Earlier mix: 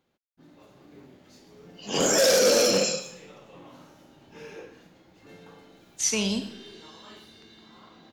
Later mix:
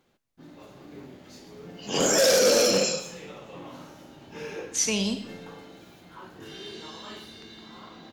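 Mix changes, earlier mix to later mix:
speech: entry −1.25 s
first sound +6.0 dB

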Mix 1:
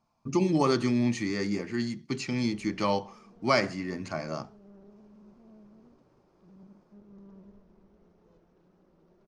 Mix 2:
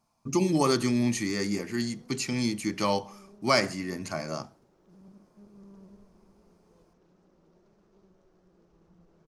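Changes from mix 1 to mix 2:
background: entry −1.55 s
master: remove high-frequency loss of the air 110 metres

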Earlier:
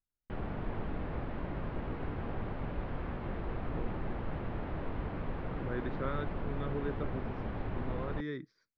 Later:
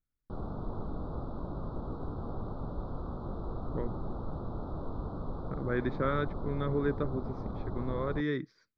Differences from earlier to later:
speech +7.0 dB
background: add elliptic band-stop filter 1,300–3,800 Hz, stop band 50 dB

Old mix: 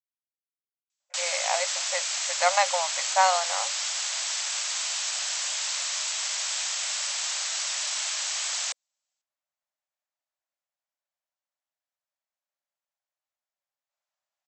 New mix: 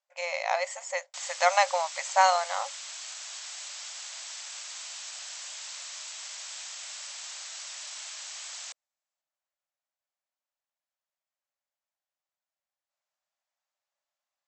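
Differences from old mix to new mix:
speech: entry −1.00 s
background −11.0 dB

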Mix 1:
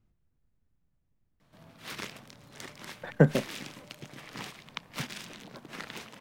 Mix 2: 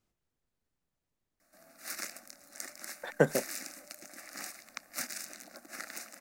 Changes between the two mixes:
background: add phaser with its sweep stopped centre 650 Hz, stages 8
master: add bass and treble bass −14 dB, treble +11 dB

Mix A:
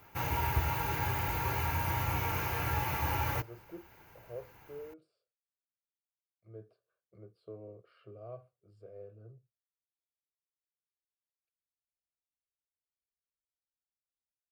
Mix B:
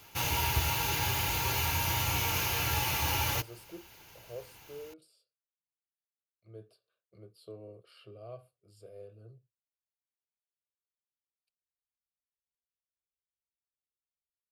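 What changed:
speech: remove high-frequency loss of the air 72 metres
master: add flat-topped bell 5,800 Hz +13.5 dB 2.5 octaves

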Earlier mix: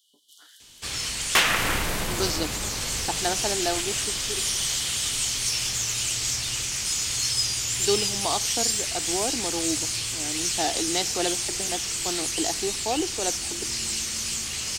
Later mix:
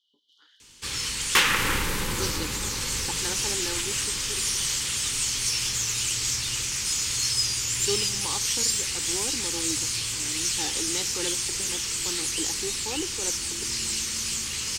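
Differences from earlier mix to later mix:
speech −5.5 dB
first sound: add high-frequency loss of the air 270 metres
master: add Butterworth band-reject 670 Hz, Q 2.8

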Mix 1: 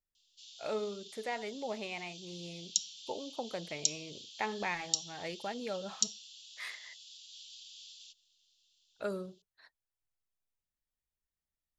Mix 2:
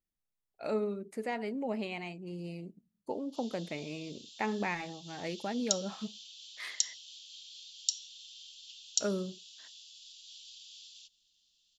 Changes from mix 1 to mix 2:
background: entry +2.95 s
master: add parametric band 240 Hz +9.5 dB 1.2 octaves

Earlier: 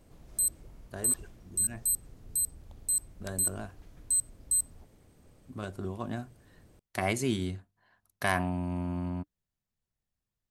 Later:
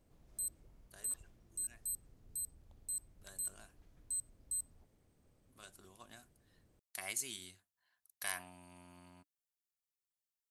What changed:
speech: add first-order pre-emphasis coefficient 0.97
background −12.0 dB

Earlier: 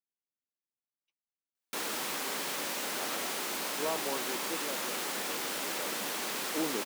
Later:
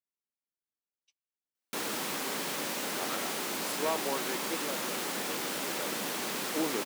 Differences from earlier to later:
speech: remove head-to-tape spacing loss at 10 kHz 38 dB
background: add low-shelf EQ 280 Hz +8.5 dB

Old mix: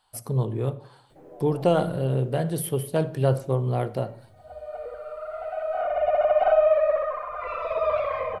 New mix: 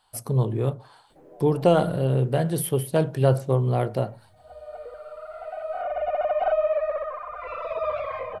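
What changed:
speech +3.0 dB
reverb: off

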